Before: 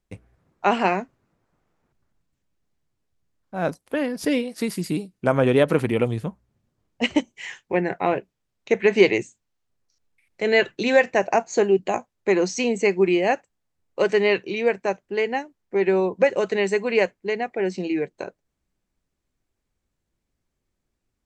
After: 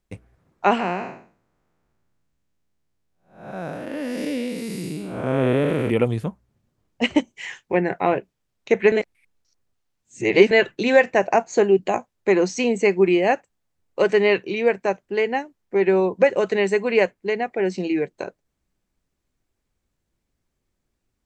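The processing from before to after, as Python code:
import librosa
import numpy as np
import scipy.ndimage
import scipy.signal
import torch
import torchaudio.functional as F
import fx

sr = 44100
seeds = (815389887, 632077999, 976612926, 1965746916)

y = fx.spec_blur(x, sr, span_ms=289.0, at=(0.79, 5.89), fade=0.02)
y = fx.edit(y, sr, fx.reverse_span(start_s=8.92, length_s=1.59), tone=tone)
y = fx.dynamic_eq(y, sr, hz=5500.0, q=0.86, threshold_db=-40.0, ratio=4.0, max_db=-4)
y = y * 10.0 ** (2.0 / 20.0)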